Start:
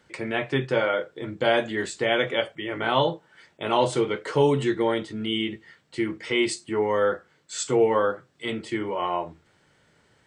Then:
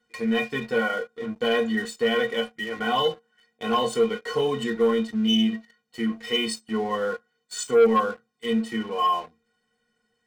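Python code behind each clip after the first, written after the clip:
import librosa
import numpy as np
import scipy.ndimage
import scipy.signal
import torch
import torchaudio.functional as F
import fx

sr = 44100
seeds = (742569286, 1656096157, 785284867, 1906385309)

y = fx.stiff_resonator(x, sr, f0_hz=220.0, decay_s=0.23, stiffness=0.03)
y = fx.leveller(y, sr, passes=2)
y = y * 10.0 ** (5.0 / 20.0)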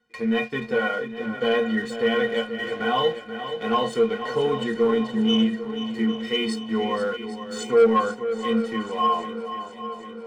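y = fx.high_shelf(x, sr, hz=5800.0, db=-11.5)
y = fx.echo_swing(y, sr, ms=801, ratio=1.5, feedback_pct=52, wet_db=-11)
y = y * 10.0 ** (1.0 / 20.0)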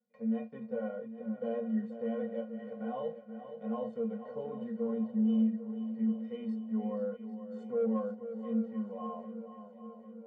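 y = fx.double_bandpass(x, sr, hz=340.0, octaves=1.4)
y = y * 10.0 ** (-4.0 / 20.0)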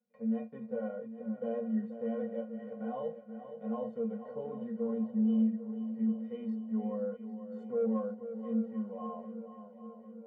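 y = fx.high_shelf(x, sr, hz=2600.0, db=-9.0)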